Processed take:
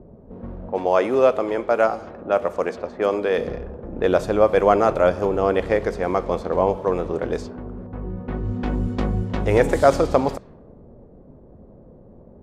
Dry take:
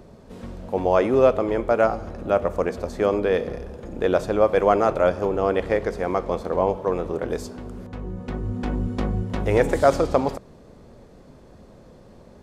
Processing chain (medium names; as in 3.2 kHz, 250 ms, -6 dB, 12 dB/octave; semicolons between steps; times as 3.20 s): 0.73–3.38 s: high-pass 360 Hz 6 dB/octave; level-controlled noise filter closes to 530 Hz, open at -20 dBFS; trim +2 dB